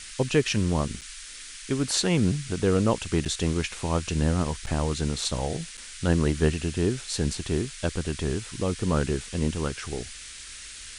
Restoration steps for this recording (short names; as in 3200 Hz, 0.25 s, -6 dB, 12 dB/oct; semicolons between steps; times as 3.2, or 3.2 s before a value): interpolate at 1.01/3.25/4.66/5.77, 7.2 ms; noise print and reduce 29 dB